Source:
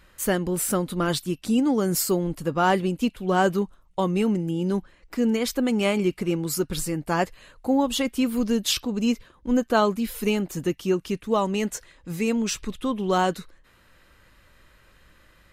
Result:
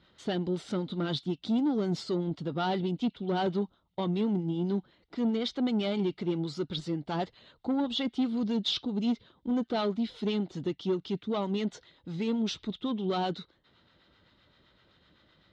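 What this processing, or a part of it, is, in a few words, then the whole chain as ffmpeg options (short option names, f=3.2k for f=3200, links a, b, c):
guitar amplifier with harmonic tremolo: -filter_complex "[0:a]acrossover=split=700[a][b];[a]aeval=exprs='val(0)*(1-0.5/2+0.5/2*cos(2*PI*7.8*n/s))':c=same[c];[b]aeval=exprs='val(0)*(1-0.5/2-0.5/2*cos(2*PI*7.8*n/s))':c=same[d];[c][d]amix=inputs=2:normalize=0,asoftclip=type=tanh:threshold=-22dB,highpass=110,equalizer=f=530:t=q:w=4:g=-5,equalizer=f=1.1k:t=q:w=4:g=-7,equalizer=f=1.7k:t=q:w=4:g=-9,equalizer=f=2.5k:t=q:w=4:g=-10,equalizer=f=3.6k:t=q:w=4:g=7,lowpass=f=4.3k:w=0.5412,lowpass=f=4.3k:w=1.3066"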